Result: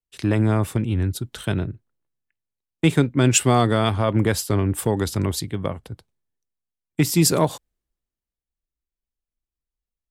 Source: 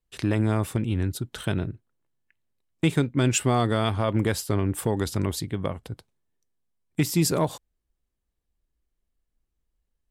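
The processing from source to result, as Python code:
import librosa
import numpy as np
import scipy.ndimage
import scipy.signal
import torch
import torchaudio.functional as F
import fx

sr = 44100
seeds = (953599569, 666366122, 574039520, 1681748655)

y = fx.band_widen(x, sr, depth_pct=40)
y = F.gain(torch.from_numpy(y), 4.0).numpy()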